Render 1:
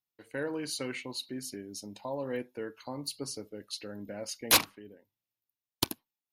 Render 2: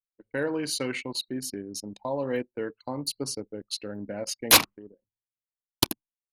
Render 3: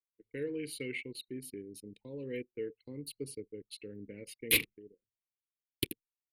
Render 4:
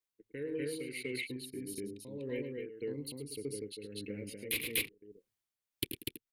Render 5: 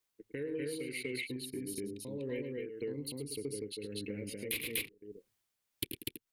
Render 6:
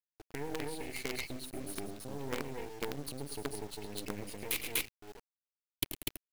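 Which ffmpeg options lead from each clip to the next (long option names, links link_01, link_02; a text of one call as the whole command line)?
ffmpeg -i in.wav -af "anlmdn=0.0631,volume=6dB" out.wav
ffmpeg -i in.wav -af "firequalizer=gain_entry='entry(140,0);entry(210,-4);entry(450,3);entry(650,-27);entry(1400,-21);entry(2100,4);entry(3400,-2);entry(6000,-21);entry(9500,-2)':delay=0.05:min_phase=1,volume=-7.5dB" out.wav
ffmpeg -i in.wav -af "aecho=1:1:105|244.9:0.316|1,acompressor=threshold=-41dB:ratio=2,tremolo=f=1.7:d=0.48,volume=4dB" out.wav
ffmpeg -i in.wav -af "acompressor=threshold=-48dB:ratio=2,volume=7dB" out.wav
ffmpeg -i in.wav -af "acrusher=bits=6:dc=4:mix=0:aa=0.000001,volume=2.5dB" out.wav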